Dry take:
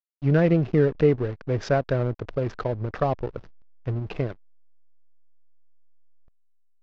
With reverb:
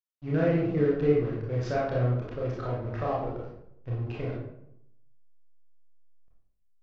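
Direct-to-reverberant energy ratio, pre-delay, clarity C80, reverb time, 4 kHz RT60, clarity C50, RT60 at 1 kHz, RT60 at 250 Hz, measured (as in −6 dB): −6.0 dB, 24 ms, 5.0 dB, 0.75 s, 0.45 s, 1.0 dB, 0.70 s, 0.85 s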